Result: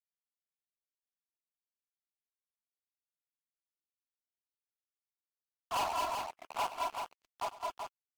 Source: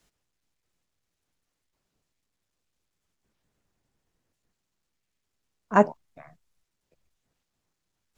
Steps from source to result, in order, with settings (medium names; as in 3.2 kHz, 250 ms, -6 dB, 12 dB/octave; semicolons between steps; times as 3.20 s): backward echo that repeats 414 ms, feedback 57%, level -6.5 dB; Chebyshev band-pass 660–1400 Hz, order 5; tilt EQ -2 dB/octave; in parallel at -2.5 dB: level held to a coarse grid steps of 15 dB; on the sum: crossover distortion -42 dBFS; power-law waveshaper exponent 0.5; hard clipper -24.5 dBFS, distortion -5 dB; multi-tap echo 100/186/214/217/380 ms -16.5/-16.5/-5/-6/-5.5 dB; trim -6 dB; Vorbis 96 kbps 48 kHz